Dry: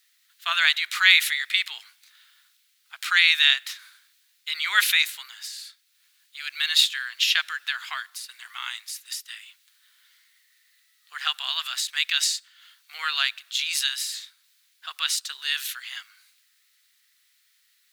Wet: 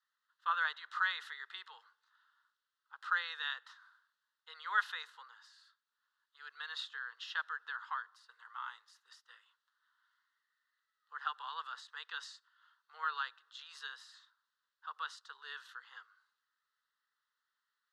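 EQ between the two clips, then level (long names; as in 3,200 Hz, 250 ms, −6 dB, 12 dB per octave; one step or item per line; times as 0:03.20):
four-pole ladder band-pass 720 Hz, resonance 30%
phaser with its sweep stopped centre 460 Hz, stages 8
+10.5 dB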